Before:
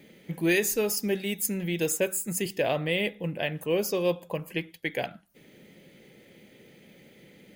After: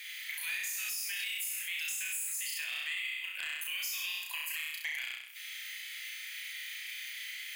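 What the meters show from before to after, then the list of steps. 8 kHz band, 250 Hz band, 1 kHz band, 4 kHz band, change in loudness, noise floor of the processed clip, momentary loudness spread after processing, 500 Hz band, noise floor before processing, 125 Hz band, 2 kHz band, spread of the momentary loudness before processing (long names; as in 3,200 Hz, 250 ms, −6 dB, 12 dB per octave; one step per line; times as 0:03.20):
−4.0 dB, below −40 dB, −16.5 dB, +0.5 dB, −7.5 dB, −45 dBFS, 7 LU, below −40 dB, −56 dBFS, below −40 dB, −1.5 dB, 9 LU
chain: inverse Chebyshev high-pass filter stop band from 400 Hz, stop band 70 dB
downward compressor 3 to 1, threshold −50 dBFS, peak gain reduction 19 dB
sine wavefolder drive 5 dB, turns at −30 dBFS
flutter between parallel walls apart 5.6 metres, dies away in 0.79 s
brickwall limiter −33.5 dBFS, peak gain reduction 9.5 dB
level +6 dB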